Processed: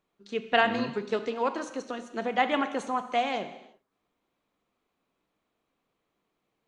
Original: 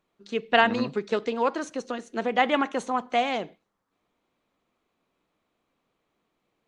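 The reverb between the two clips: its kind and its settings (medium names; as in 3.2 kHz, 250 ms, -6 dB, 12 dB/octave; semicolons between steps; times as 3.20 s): gated-style reverb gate 380 ms falling, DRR 9 dB; trim -3.5 dB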